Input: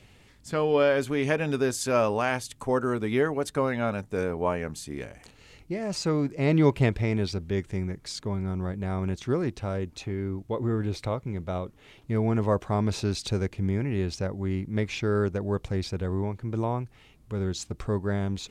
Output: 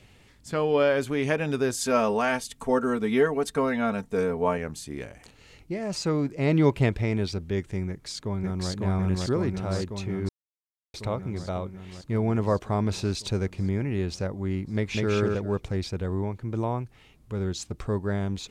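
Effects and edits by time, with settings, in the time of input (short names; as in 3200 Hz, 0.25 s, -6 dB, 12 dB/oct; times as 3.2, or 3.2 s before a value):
1.76–4.58 comb 4.4 ms
7.88–8.71 echo throw 0.55 s, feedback 75%, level 0 dB
10.29–10.94 mute
14.74–15.14 echo throw 0.2 s, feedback 20%, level -2 dB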